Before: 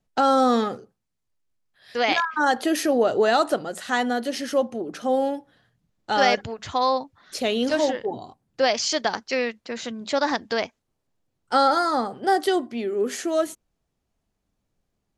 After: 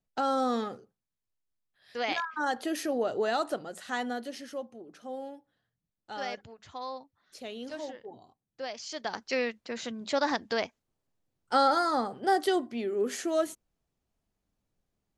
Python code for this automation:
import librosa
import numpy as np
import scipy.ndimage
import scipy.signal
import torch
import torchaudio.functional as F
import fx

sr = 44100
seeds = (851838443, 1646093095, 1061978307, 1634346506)

y = fx.gain(x, sr, db=fx.line((4.12, -9.5), (4.68, -17.0), (8.85, -17.0), (9.26, -5.0)))